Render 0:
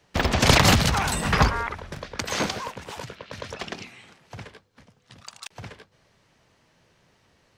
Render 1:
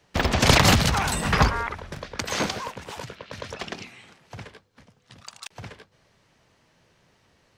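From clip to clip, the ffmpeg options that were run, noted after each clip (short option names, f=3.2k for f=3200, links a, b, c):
-af anull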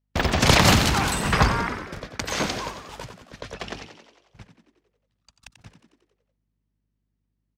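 -filter_complex "[0:a]aeval=exprs='val(0)+0.00708*(sin(2*PI*50*n/s)+sin(2*PI*2*50*n/s)/2+sin(2*PI*3*50*n/s)/3+sin(2*PI*4*50*n/s)/4+sin(2*PI*5*50*n/s)/5)':c=same,agate=range=-33dB:threshold=-35dB:ratio=16:detection=peak,asplit=8[a][b][c][d][e][f][g][h];[b]adelay=90,afreqshift=61,volume=-9.5dB[i];[c]adelay=180,afreqshift=122,volume=-13.9dB[j];[d]adelay=270,afreqshift=183,volume=-18.4dB[k];[e]adelay=360,afreqshift=244,volume=-22.8dB[l];[f]adelay=450,afreqshift=305,volume=-27.2dB[m];[g]adelay=540,afreqshift=366,volume=-31.7dB[n];[h]adelay=630,afreqshift=427,volume=-36.1dB[o];[a][i][j][k][l][m][n][o]amix=inputs=8:normalize=0"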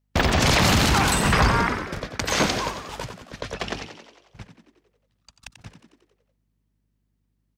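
-af "alimiter=limit=-14dB:level=0:latency=1:release=29,volume=4.5dB"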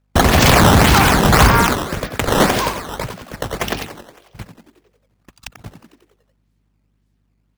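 -af "acrusher=samples=11:mix=1:aa=0.000001:lfo=1:lforange=17.6:lforate=1.8,volume=8dB"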